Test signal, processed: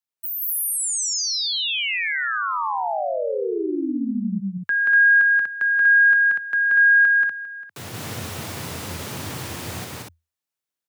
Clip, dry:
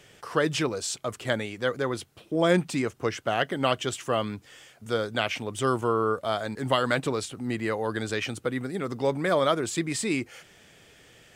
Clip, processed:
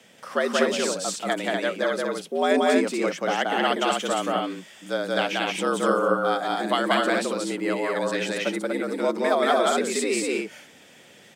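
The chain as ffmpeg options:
-af "aecho=1:1:180.8|242:0.891|0.708,afreqshift=81"

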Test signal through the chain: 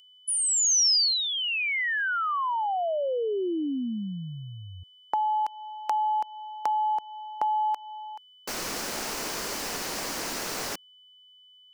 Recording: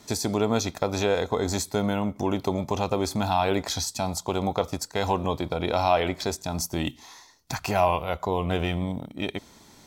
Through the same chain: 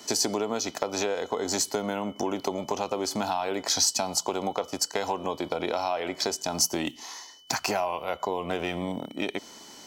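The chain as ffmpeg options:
-filter_complex "[0:a]acrossover=split=220 4500:gain=0.126 1 0.0708[a][b][c];[a][b][c]amix=inputs=3:normalize=0,acompressor=threshold=-30dB:ratio=6,aeval=exprs='val(0)+0.00141*sin(2*PI*3000*n/s)':c=same,aexciter=amount=8.9:drive=2.8:freq=5k,volume=5dB"

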